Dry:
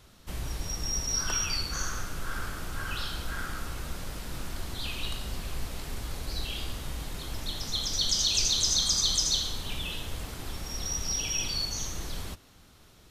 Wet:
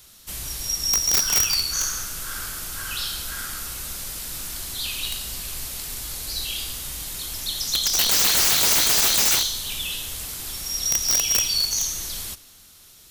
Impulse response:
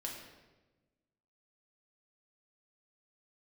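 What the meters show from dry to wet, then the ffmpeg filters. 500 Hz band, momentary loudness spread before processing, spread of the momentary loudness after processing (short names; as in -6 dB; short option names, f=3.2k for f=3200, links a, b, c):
+4.5 dB, 15 LU, 15 LU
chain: -filter_complex "[0:a]crystalizer=i=7:c=0,aeval=exprs='(mod(2.82*val(0)+1,2)-1)/2.82':c=same,asplit=2[a][b];[1:a]atrim=start_sample=2205,adelay=85[c];[b][c]afir=irnorm=-1:irlink=0,volume=-18.5dB[d];[a][d]amix=inputs=2:normalize=0,volume=-4dB"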